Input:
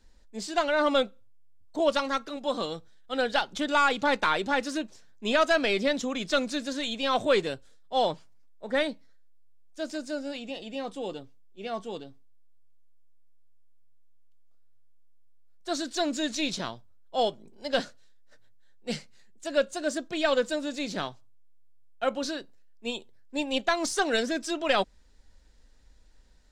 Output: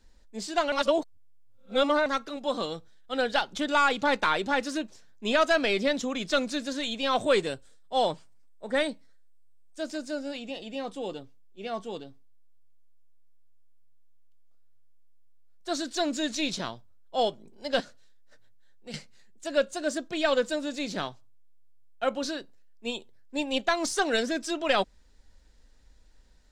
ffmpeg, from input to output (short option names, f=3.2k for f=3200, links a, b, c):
-filter_complex "[0:a]asettb=1/sr,asplit=3[a][b][c];[a]atrim=end=7.214[d];[b]atrim=start=7.21:end=9.82,asetpts=PTS-STARTPTS,afade=t=in:d=0.004:c=qsin,afade=t=out:st=2.606:d=0.004:c=qsin,equalizer=f=8.3k:w=5.2:g=9[e];[c]atrim=start=9.816[f];[d][e]acrossfade=d=0.004:c1=hsin:c2=qsin[g];[g][f]acrossfade=d=0.004:c1=qsin:c2=hsin,asettb=1/sr,asplit=3[h][i][j];[h]atrim=end=17.804[k];[i]atrim=start=17.8:end=18.94,asetpts=PTS-STARTPTS,afade=t=in:d=0.004:c=qsin,afade=t=out:st=1.136:d=0.004:c=qsin,acompressor=threshold=-45dB:ratio=2:attack=3.2:release=140:knee=1:detection=peak[l];[j]atrim=start=18.936[m];[k][l]acrossfade=d=0.004:c1=hsin:c2=qsin[n];[n][m]acrossfade=d=0.004:c1=qsin:c2=hsin,asplit=3[o][p][q];[o]atrim=end=0.722[r];[p]atrim=start=0.718:end=2.062,asetpts=PTS-STARTPTS,areverse[s];[q]atrim=start=2.058[t];[r][s]acrossfade=d=0.004:c1=hsin:c2=hsin[u];[u][t]acrossfade=d=0.004:c1=hsin:c2=hsin"